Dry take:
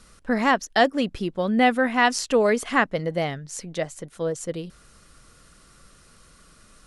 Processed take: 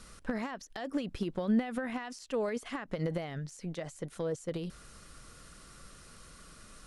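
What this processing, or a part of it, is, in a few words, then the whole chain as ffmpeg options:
de-esser from a sidechain: -filter_complex "[0:a]asplit=2[s0][s1];[s1]highpass=f=6500:p=1,apad=whole_len=302649[s2];[s0][s2]sidechaincompress=threshold=0.00355:ratio=6:attack=0.68:release=50"

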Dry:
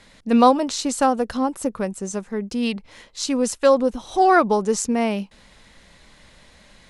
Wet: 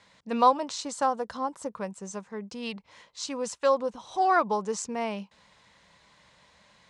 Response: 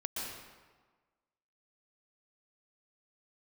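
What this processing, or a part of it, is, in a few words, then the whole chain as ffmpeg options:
car door speaker: -filter_complex "[0:a]highpass=100,equalizer=f=250:t=q:w=4:g=-8,equalizer=f=360:t=q:w=4:g=-5,equalizer=f=1000:t=q:w=4:g=7,lowpass=f=8300:w=0.5412,lowpass=f=8300:w=1.3066,asettb=1/sr,asplit=3[s0][s1][s2];[s0]atrim=end=0.834[s3];[s1]atrim=start=0.83:end=1.7,asetpts=PTS-STARTPTS,afade=t=in:d=0.004:c=qsin,afade=t=out:st=0.866:d=0.004:c=qsin,equalizer=f=2600:w=4:g=-6[s4];[s2]atrim=start=1.696[s5];[s3][s4]acrossfade=d=0.004:c1=hsin:c2=qsin[s6];[s6][s5]acrossfade=d=0.004:c1=qsin:c2=hsin,volume=0.398"

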